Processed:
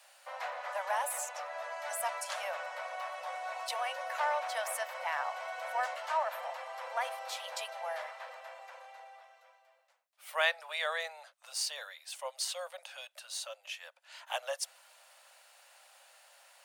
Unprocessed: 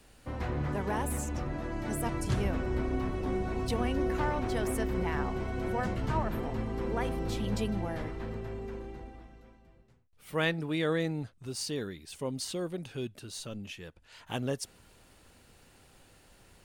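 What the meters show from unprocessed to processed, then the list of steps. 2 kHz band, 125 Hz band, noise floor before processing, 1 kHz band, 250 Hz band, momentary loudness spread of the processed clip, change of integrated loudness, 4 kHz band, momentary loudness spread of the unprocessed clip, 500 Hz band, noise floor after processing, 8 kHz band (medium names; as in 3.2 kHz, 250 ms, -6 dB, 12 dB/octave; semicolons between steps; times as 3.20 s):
+2.5 dB, under -40 dB, -60 dBFS, +2.5 dB, under -40 dB, 14 LU, -3.0 dB, +2.5 dB, 11 LU, -5.5 dB, -67 dBFS, +2.5 dB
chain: steep high-pass 550 Hz 96 dB/octave; trim +2.5 dB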